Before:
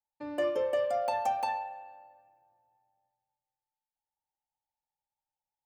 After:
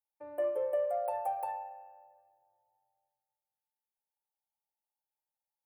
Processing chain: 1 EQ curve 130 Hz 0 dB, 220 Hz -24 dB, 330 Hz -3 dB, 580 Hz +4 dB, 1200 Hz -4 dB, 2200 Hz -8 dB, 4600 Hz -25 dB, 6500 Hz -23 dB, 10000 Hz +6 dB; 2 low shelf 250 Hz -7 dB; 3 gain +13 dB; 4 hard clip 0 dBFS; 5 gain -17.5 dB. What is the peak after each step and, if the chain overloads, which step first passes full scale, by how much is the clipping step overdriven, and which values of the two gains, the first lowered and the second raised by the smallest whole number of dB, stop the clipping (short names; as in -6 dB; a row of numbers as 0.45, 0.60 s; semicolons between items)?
-17.0, -18.0, -5.0, -5.0, -22.5 dBFS; no overload